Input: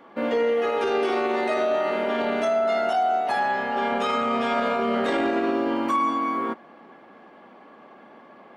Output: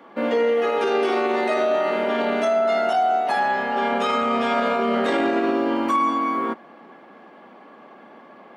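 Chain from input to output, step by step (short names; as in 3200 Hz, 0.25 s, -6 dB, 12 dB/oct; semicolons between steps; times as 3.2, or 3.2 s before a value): HPF 130 Hz 24 dB/oct; gain +2.5 dB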